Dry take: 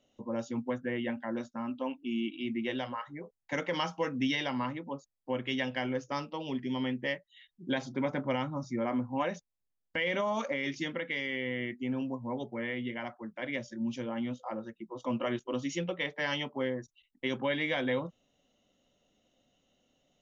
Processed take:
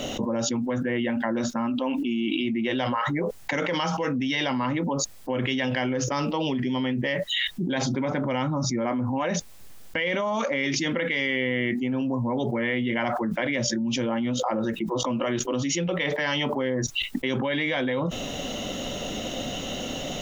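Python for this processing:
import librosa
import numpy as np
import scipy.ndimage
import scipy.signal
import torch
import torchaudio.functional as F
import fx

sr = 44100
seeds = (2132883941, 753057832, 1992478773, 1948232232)

y = fx.env_flatten(x, sr, amount_pct=100)
y = F.gain(torch.from_numpy(y), 1.0).numpy()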